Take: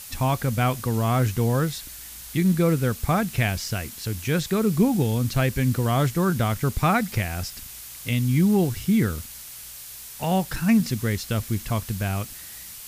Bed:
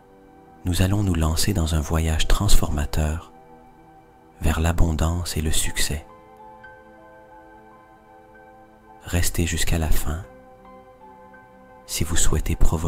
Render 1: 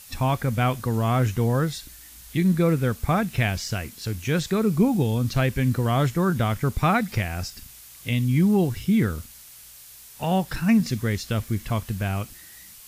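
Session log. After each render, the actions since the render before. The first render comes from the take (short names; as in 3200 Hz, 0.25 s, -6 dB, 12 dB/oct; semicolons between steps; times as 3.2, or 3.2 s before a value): noise print and reduce 6 dB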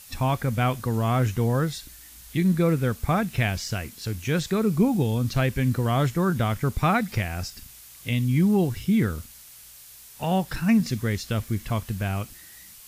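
gain -1 dB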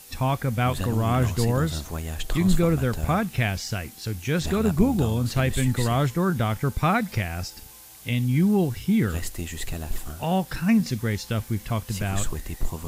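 add bed -10 dB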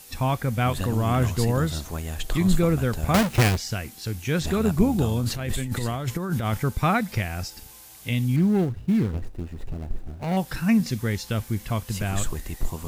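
3.14–3.57 half-waves squared off; 5.2–6.63 negative-ratio compressor -25 dBFS, ratio -0.5; 8.36–10.37 median filter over 41 samples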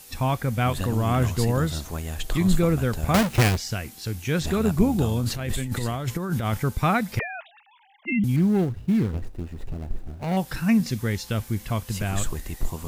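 7.19–8.24 sine-wave speech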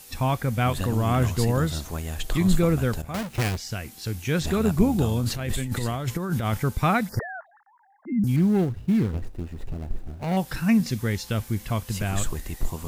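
3.02–4.08 fade in, from -14.5 dB; 7.09–8.27 elliptic band-stop 1700–4800 Hz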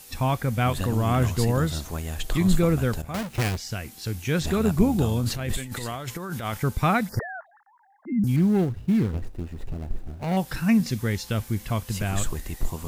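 5.57–6.63 low shelf 380 Hz -8.5 dB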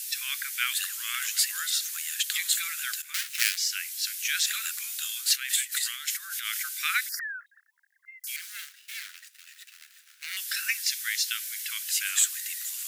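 steep high-pass 1500 Hz 48 dB/oct; high shelf 2400 Hz +11.5 dB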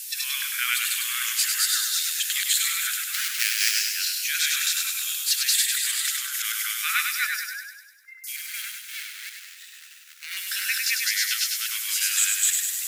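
reverse delay 0.169 s, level 0 dB; thinning echo 0.1 s, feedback 59%, high-pass 1100 Hz, level -4 dB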